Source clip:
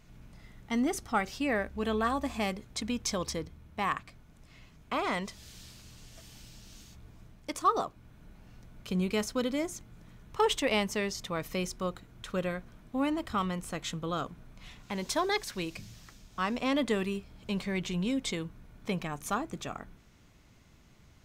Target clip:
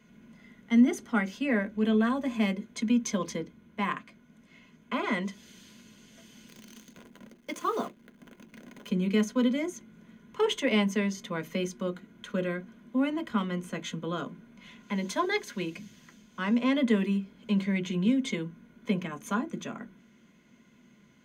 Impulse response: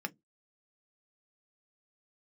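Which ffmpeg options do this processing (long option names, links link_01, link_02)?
-filter_complex "[0:a]equalizer=frequency=62:width=0.4:gain=7,asettb=1/sr,asplit=3[link_01][link_02][link_03];[link_01]atrim=end=6.484[link_04];[link_02]atrim=start=6.48:end=8.89,asetpts=PTS-STARTPTS,afade=type=in:duration=0.004:curve=qsin,afade=type=out:start_time=2.406:duration=0.004:curve=qsin,acrusher=bits=8:dc=4:mix=0:aa=0.000001[link_05];[link_03]atrim=start=8.886[link_06];[link_04][link_05]acrossfade=duration=0.004:curve1=hsin:curve2=qsin[link_07];[link_07][link_06]acrossfade=duration=0.004:curve1=qsin:curve2=hsin[link_08];[1:a]atrim=start_sample=2205,asetrate=52920,aresample=44100[link_09];[link_08][link_09]afir=irnorm=-1:irlink=0"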